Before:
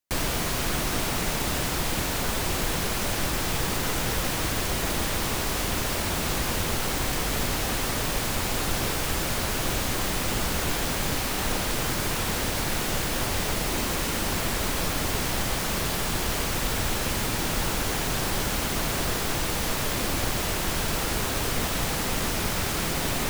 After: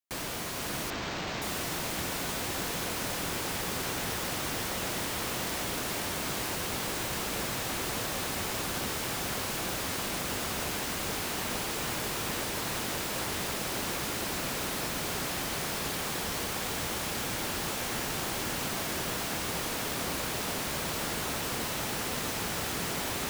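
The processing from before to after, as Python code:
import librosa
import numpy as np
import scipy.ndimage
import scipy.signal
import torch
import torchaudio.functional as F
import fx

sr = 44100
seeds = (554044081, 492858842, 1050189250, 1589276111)

y = fx.highpass(x, sr, hz=150.0, slope=6)
y = fx.echo_diffused(y, sr, ms=514, feedback_pct=73, wet_db=-4.0)
y = fx.resample_linear(y, sr, factor=4, at=(0.9, 1.42))
y = y * 10.0 ** (-7.5 / 20.0)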